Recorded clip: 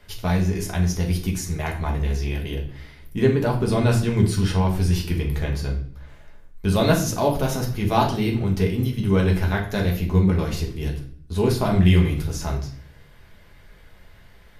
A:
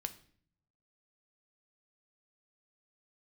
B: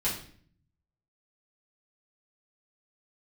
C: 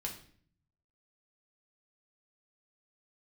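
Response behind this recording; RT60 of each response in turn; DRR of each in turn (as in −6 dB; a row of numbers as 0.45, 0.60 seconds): C; 0.55, 0.50, 0.50 seconds; 8.5, −8.5, −0.5 decibels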